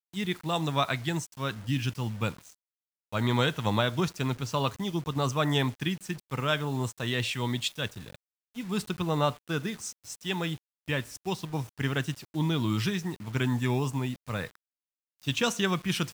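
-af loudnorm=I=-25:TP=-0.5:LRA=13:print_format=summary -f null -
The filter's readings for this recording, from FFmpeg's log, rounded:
Input Integrated:    -30.3 LUFS
Input True Peak:     -10.4 dBTP
Input LRA:             2.1 LU
Input Threshold:     -40.6 LUFS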